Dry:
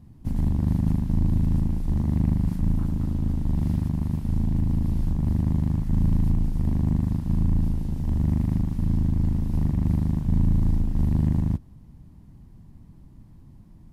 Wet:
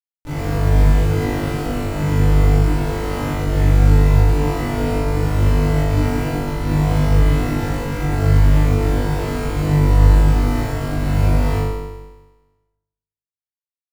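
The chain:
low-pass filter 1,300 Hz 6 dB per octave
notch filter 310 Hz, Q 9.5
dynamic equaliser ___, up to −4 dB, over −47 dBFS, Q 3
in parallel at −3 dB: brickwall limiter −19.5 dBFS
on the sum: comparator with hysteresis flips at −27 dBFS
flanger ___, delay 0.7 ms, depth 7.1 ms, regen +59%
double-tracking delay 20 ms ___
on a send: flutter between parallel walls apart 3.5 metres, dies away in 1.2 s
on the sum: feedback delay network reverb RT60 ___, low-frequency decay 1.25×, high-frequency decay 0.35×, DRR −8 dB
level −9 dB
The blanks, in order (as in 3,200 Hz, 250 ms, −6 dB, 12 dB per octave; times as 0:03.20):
410 Hz, 1.7 Hz, −13.5 dB, 0.81 s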